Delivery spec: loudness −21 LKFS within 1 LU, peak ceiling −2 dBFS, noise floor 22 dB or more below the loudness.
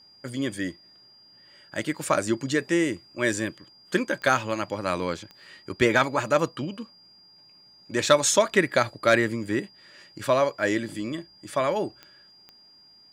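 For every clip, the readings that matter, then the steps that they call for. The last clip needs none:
number of clicks 4; interfering tone 4,800 Hz; level of the tone −52 dBFS; integrated loudness −25.5 LKFS; sample peak −7.0 dBFS; target loudness −21.0 LKFS
→ click removal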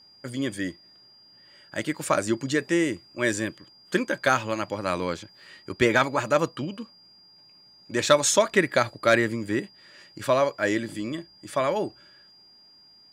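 number of clicks 0; interfering tone 4,800 Hz; level of the tone −52 dBFS
→ notch filter 4,800 Hz, Q 30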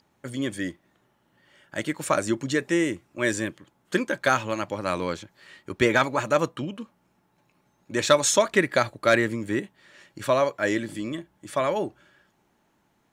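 interfering tone none found; integrated loudness −25.5 LKFS; sample peak −7.0 dBFS; target loudness −21.0 LKFS
→ level +4.5 dB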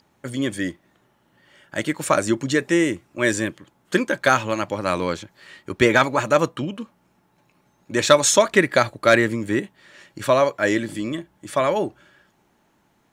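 integrated loudness −21.0 LKFS; sample peak −2.5 dBFS; background noise floor −64 dBFS

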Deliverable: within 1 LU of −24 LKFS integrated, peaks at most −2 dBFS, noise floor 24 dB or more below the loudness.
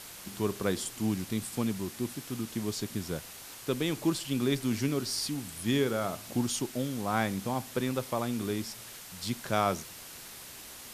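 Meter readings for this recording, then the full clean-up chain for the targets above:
background noise floor −47 dBFS; target noise floor −57 dBFS; integrated loudness −32.5 LKFS; sample peak −13.0 dBFS; target loudness −24.0 LKFS
→ noise reduction from a noise print 10 dB
level +8.5 dB

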